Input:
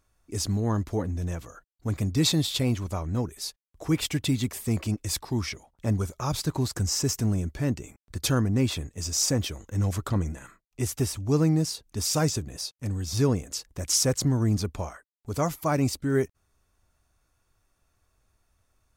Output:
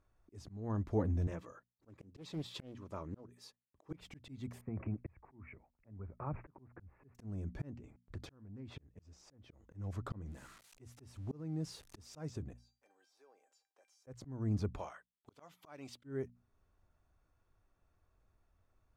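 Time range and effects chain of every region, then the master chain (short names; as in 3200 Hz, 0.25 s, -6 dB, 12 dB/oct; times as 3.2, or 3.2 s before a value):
1.27–3.91 HPF 260 Hz 6 dB/oct + notch comb 720 Hz + Doppler distortion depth 0.44 ms
4.61–7.15 steep low-pass 2500 Hz 96 dB/oct + compressor 10:1, threshold -29 dBFS + three-band expander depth 70%
7.74–9.53 high shelf 4900 Hz -9.5 dB + compressor 16:1, threshold -35 dBFS + Doppler distortion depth 0.16 ms
10.26–12.03 switching spikes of -30 dBFS + LPF 11000 Hz + compressor 2:1, threshold -27 dBFS
12.53–14.07 HPF 490 Hz 24 dB/oct + compressor 3:1, threshold -42 dBFS + resonator 790 Hz, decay 0.28 s, mix 90%
14.78–16.04 HPF 1000 Hz 6 dB/oct + bell 3300 Hz +9.5 dB 0.66 oct
whole clip: LPF 1200 Hz 6 dB/oct; notches 60/120/180/240 Hz; auto swell 0.567 s; gain -3 dB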